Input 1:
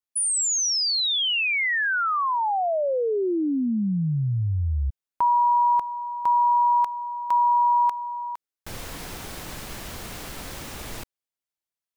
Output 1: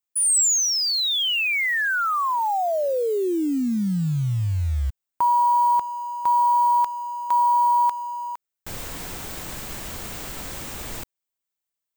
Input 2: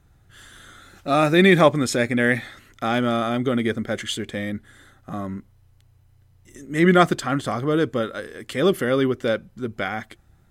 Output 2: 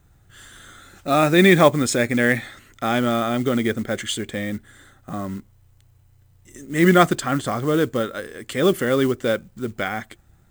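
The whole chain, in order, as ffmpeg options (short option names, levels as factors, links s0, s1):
-af "acrusher=bits=6:mode=log:mix=0:aa=0.000001,aexciter=amount=1.6:drive=2.9:freq=7000,volume=1.12"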